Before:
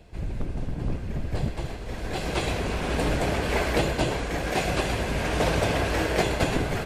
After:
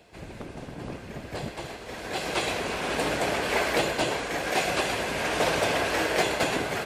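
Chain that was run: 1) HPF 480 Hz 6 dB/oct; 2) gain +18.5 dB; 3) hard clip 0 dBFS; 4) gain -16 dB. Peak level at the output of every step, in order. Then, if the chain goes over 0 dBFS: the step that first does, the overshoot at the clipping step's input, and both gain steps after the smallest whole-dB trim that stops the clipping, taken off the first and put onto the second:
-12.5, +6.0, 0.0, -16.0 dBFS; step 2, 6.0 dB; step 2 +12.5 dB, step 4 -10 dB

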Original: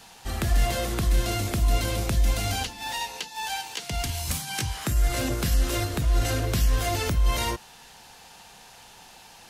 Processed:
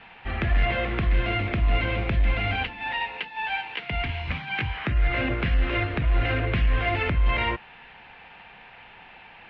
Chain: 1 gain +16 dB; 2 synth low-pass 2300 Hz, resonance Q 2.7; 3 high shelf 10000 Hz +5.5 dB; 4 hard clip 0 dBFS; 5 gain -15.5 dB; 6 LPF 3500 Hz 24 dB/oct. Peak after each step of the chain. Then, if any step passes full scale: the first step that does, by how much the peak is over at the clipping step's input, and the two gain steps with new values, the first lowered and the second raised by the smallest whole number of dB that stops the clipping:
+2.5, +7.0, +7.0, 0.0, -15.5, -14.0 dBFS; step 1, 7.0 dB; step 1 +9 dB, step 5 -8.5 dB

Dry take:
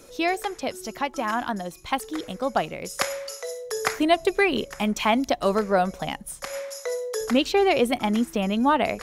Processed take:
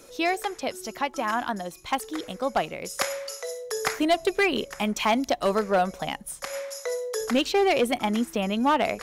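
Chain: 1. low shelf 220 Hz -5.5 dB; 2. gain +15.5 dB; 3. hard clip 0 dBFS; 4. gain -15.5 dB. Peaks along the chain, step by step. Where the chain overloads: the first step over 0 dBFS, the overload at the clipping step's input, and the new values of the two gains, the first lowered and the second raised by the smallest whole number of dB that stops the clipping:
-8.0, +7.5, 0.0, -15.5 dBFS; step 2, 7.5 dB; step 2 +7.5 dB, step 4 -7.5 dB

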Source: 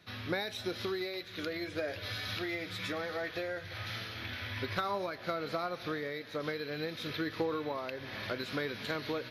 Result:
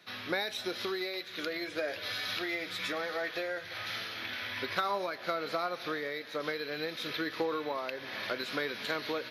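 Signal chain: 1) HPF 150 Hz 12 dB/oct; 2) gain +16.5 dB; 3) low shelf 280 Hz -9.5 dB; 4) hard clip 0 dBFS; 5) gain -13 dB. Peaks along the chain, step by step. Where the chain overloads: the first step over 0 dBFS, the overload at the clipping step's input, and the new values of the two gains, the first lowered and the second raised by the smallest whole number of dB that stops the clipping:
-18.5, -2.5, -2.5, -2.5, -15.5 dBFS; no overload

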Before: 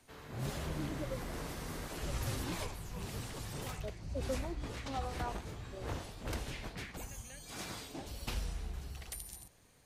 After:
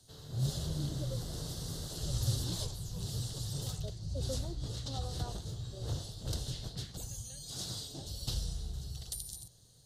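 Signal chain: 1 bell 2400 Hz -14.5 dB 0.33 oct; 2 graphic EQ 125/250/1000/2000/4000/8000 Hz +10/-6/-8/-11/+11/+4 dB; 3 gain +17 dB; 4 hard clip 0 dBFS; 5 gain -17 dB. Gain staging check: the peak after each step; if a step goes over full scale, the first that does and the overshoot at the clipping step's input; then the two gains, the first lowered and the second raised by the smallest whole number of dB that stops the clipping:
-27.0, -21.5, -4.5, -4.5, -21.5 dBFS; no overload

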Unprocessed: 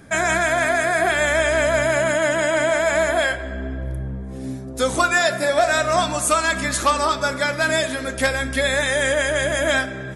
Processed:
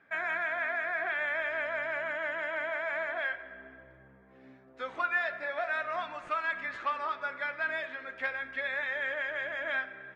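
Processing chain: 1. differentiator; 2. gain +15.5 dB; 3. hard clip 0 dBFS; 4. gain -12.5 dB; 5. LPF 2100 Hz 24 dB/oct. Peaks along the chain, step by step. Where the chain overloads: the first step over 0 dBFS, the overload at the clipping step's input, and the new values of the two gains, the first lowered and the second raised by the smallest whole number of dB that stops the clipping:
-6.5, +9.0, 0.0, -12.5, -19.5 dBFS; step 2, 9.0 dB; step 2 +6.5 dB, step 4 -3.5 dB

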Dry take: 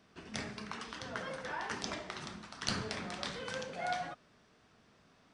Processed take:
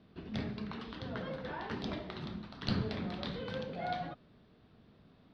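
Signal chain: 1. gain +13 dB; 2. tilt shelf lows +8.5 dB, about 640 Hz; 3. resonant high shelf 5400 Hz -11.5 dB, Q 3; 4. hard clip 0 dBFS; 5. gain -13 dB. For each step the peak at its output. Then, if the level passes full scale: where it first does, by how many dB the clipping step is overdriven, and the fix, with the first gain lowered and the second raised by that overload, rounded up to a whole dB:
-2.5, -7.0, -4.0, -4.0, -17.0 dBFS; no overload

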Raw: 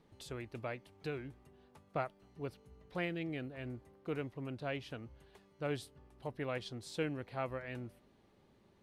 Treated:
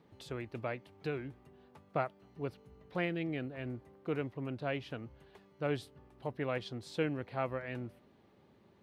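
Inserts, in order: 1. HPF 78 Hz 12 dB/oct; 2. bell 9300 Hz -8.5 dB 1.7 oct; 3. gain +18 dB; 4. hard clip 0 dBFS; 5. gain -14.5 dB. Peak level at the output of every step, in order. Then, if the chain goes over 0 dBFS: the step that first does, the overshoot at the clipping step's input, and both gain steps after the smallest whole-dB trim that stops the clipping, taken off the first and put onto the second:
-21.0, -21.5, -3.5, -3.5, -18.0 dBFS; no overload

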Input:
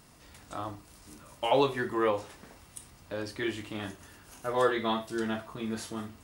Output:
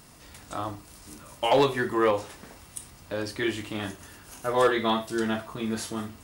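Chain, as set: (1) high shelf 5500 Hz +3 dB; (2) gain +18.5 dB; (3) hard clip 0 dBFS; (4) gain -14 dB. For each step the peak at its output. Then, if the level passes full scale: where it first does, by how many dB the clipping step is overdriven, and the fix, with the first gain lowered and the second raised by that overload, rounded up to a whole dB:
-12.5, +6.0, 0.0, -14.0 dBFS; step 2, 6.0 dB; step 2 +12.5 dB, step 4 -8 dB

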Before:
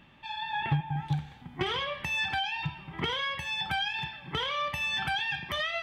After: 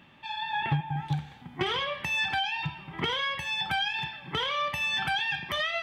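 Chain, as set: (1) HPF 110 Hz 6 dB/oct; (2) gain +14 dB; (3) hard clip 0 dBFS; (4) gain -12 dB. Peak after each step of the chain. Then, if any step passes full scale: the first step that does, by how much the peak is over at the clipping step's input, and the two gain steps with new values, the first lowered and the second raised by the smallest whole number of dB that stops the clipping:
-18.0, -4.0, -4.0, -16.0 dBFS; no overload

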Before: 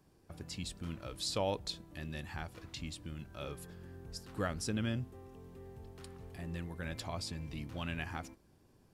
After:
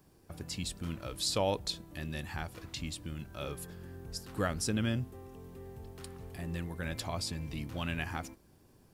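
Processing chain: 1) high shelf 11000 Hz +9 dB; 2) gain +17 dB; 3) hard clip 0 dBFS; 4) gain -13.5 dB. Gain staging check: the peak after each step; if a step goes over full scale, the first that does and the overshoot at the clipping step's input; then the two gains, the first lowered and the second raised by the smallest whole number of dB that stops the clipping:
-22.0, -5.0, -5.0, -18.5 dBFS; no overload

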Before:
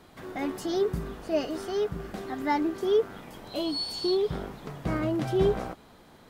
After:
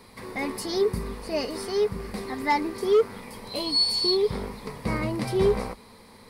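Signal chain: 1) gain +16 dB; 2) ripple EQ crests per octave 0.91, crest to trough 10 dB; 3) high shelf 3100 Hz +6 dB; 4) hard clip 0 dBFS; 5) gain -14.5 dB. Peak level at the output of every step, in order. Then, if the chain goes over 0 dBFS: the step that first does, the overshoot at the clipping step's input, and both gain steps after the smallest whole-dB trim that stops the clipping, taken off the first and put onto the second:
+3.0, +4.0, +4.5, 0.0, -14.5 dBFS; step 1, 4.5 dB; step 1 +11 dB, step 5 -9.5 dB

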